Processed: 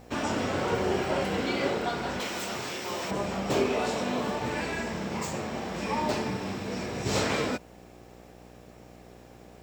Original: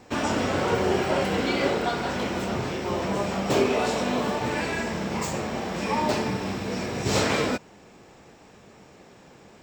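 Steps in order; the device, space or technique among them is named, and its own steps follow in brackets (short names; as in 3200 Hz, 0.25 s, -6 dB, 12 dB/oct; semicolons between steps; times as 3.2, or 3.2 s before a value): video cassette with head-switching buzz (buzz 60 Hz, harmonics 13, -48 dBFS -2 dB/oct; white noise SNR 39 dB); 2.2–3.11 tilt +3 dB/oct; gain -4 dB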